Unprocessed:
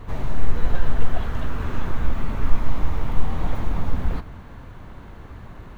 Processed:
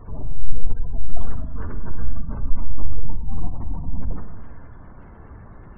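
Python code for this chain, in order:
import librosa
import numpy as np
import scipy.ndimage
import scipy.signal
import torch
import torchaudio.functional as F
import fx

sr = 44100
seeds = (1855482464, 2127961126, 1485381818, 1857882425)

y = fx.spec_gate(x, sr, threshold_db=-30, keep='strong')
y = fx.rev_schroeder(y, sr, rt60_s=1.4, comb_ms=38, drr_db=6.0)
y = y * librosa.db_to_amplitude(-3.0)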